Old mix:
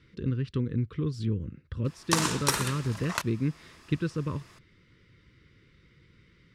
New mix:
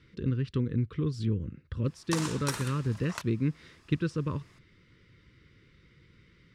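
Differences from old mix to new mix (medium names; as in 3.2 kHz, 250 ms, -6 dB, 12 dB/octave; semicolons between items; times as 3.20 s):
background -8.0 dB; master: add peaking EQ 12 kHz -3 dB 0.3 oct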